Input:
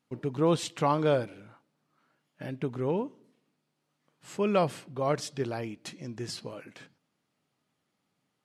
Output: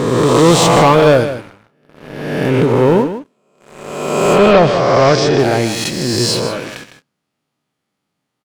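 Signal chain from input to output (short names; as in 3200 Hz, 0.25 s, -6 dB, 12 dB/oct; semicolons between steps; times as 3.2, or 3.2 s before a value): spectral swells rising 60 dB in 1.53 s; sample leveller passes 3; 4.38–5.39 LPF 5400 Hz 24 dB/oct; echo 0.156 s -11 dB; gain +6.5 dB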